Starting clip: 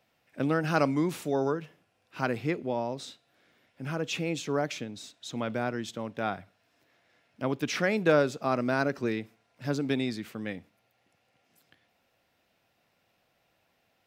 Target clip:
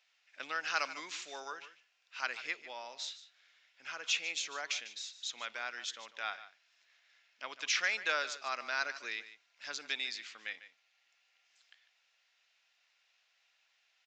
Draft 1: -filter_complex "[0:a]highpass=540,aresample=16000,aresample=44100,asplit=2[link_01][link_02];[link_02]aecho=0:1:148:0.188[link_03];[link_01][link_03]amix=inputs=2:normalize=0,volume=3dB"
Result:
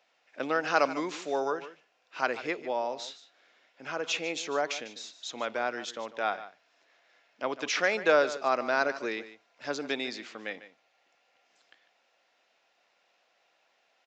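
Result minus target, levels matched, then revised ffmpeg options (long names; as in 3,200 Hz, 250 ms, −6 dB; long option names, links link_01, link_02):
500 Hz band +12.0 dB
-filter_complex "[0:a]highpass=1900,aresample=16000,aresample=44100,asplit=2[link_01][link_02];[link_02]aecho=0:1:148:0.188[link_03];[link_01][link_03]amix=inputs=2:normalize=0,volume=3dB"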